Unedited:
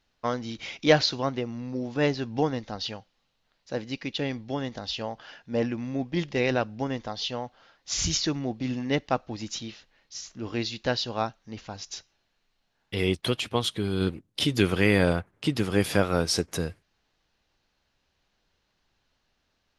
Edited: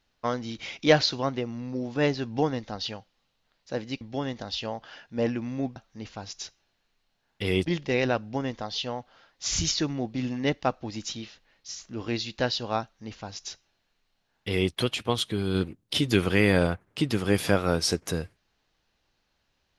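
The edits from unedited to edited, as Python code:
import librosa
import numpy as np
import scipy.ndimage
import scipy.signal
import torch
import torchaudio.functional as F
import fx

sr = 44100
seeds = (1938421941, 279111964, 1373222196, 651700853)

y = fx.edit(x, sr, fx.cut(start_s=4.01, length_s=0.36),
    fx.duplicate(start_s=11.28, length_s=1.9, to_s=6.12), tone=tone)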